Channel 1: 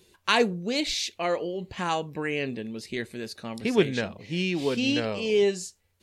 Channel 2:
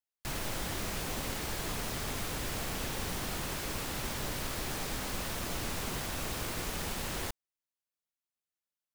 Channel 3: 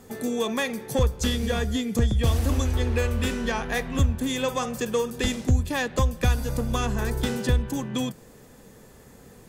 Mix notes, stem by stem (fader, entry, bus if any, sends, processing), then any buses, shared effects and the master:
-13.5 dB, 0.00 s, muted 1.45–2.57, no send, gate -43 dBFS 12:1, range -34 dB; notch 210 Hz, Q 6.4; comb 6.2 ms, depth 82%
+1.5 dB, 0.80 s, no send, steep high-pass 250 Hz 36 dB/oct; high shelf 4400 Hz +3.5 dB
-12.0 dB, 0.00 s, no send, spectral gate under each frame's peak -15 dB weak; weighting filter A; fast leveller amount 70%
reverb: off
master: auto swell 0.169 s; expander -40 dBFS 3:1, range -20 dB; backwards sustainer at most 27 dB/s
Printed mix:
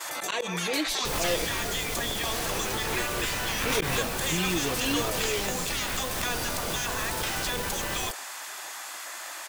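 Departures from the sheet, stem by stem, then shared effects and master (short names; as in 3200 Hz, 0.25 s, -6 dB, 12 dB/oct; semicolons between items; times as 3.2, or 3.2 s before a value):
stem 1 -13.5 dB -> -5.5 dB; stem 2: missing steep high-pass 250 Hz 36 dB/oct; stem 3 -12.0 dB -> -1.0 dB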